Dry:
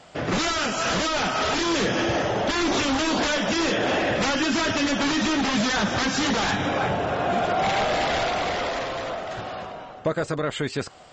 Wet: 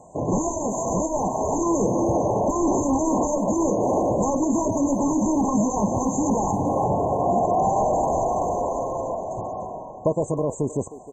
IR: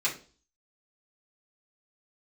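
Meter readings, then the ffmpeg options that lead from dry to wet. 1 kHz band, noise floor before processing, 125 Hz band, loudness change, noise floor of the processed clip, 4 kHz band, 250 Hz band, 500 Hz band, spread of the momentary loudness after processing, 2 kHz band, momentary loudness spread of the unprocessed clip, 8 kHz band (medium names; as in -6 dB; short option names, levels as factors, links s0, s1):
+2.0 dB, -40 dBFS, +3.0 dB, +0.5 dB, -38 dBFS, under -40 dB, +3.0 dB, +3.0 dB, 6 LU, under -40 dB, 7 LU, +1.0 dB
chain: -filter_complex "[0:a]asplit=2[s0][s1];[s1]adelay=310,highpass=300,lowpass=3400,asoftclip=type=hard:threshold=0.0708,volume=0.251[s2];[s0][s2]amix=inputs=2:normalize=0,afftfilt=real='re*(1-between(b*sr/4096,1100,6100))':imag='im*(1-between(b*sr/4096,1100,6100))':win_size=4096:overlap=0.75,volume=1.41"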